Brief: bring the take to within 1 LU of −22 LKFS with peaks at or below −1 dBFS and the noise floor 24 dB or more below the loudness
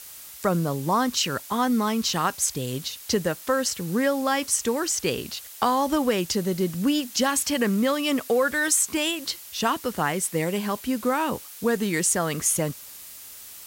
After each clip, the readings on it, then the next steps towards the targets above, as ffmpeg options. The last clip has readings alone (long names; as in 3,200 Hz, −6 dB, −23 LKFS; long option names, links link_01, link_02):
background noise floor −43 dBFS; target noise floor −49 dBFS; integrated loudness −24.5 LKFS; sample peak −7.5 dBFS; target loudness −22.0 LKFS
→ -af "afftdn=noise_reduction=6:noise_floor=-43"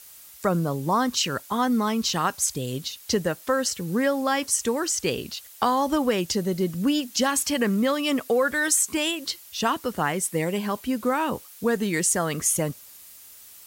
background noise floor −47 dBFS; target noise floor −49 dBFS
→ -af "afftdn=noise_reduction=6:noise_floor=-47"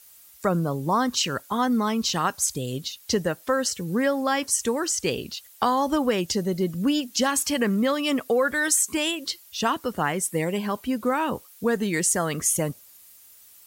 background noise floor −51 dBFS; integrated loudness −24.5 LKFS; sample peak −8.0 dBFS; target loudness −22.0 LKFS
→ -af "volume=2.5dB"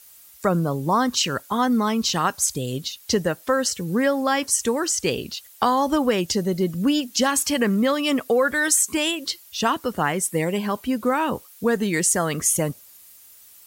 integrated loudness −22.0 LKFS; sample peak −5.5 dBFS; background noise floor −49 dBFS